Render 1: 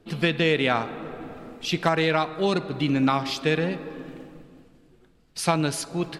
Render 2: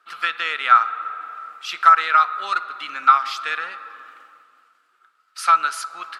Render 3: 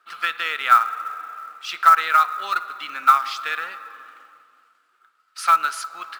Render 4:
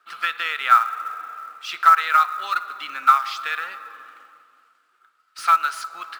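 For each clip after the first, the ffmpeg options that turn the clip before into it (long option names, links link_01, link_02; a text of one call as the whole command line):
ffmpeg -i in.wav -af "highpass=frequency=1300:width_type=q:width=14,volume=-2dB" out.wav
ffmpeg -i in.wav -af "acrusher=bits=6:mode=log:mix=0:aa=0.000001,volume=-1dB" out.wav
ffmpeg -i in.wav -filter_complex "[0:a]acrossover=split=590|4400[link_01][link_02][link_03];[link_01]acompressor=threshold=-50dB:ratio=6[link_04];[link_03]asoftclip=type=hard:threshold=-38dB[link_05];[link_04][link_02][link_05]amix=inputs=3:normalize=0" out.wav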